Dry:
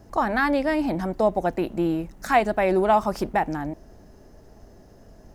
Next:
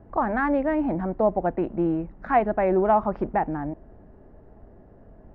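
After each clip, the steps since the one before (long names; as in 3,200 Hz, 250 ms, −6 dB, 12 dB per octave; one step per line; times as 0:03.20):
Bessel low-pass filter 1,400 Hz, order 4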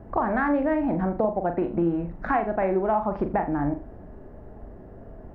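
downward compressor, threshold −27 dBFS, peak gain reduction 12 dB
on a send: flutter between parallel walls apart 7.1 metres, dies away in 0.32 s
on the sum: level +5.5 dB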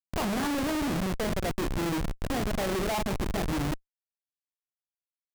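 rotating-speaker cabinet horn 8 Hz, later 0.7 Hz, at 0:01.51
comparator with hysteresis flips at −29 dBFS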